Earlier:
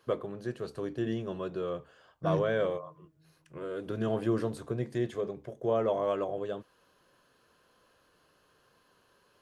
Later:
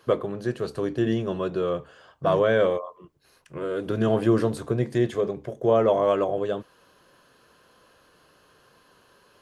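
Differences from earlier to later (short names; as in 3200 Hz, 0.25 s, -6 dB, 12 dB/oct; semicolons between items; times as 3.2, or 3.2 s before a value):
first voice +8.5 dB; reverb: off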